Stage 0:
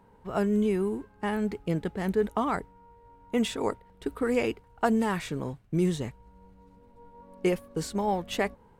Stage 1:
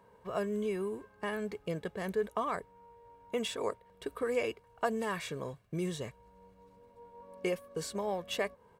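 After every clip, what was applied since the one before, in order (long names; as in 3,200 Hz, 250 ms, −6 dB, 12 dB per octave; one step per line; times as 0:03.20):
high-pass filter 240 Hz 6 dB per octave
comb filter 1.8 ms, depth 50%
in parallel at +2 dB: downward compressor, threshold −37 dBFS, peak gain reduction 16.5 dB
on the sum: level −8 dB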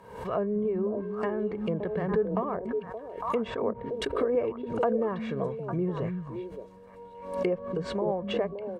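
treble cut that deepens with the level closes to 840 Hz, closed at −32 dBFS
echo through a band-pass that steps 285 ms, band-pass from 170 Hz, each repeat 1.4 octaves, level −2 dB
background raised ahead of every attack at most 79 dB per second
level +5.5 dB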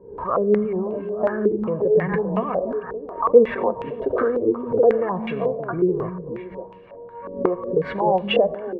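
flanger 0.34 Hz, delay 1.9 ms, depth 7.5 ms, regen +38%
convolution reverb RT60 2.0 s, pre-delay 28 ms, DRR 14.5 dB
low-pass on a step sequencer 5.5 Hz 360–2,700 Hz
level +7.5 dB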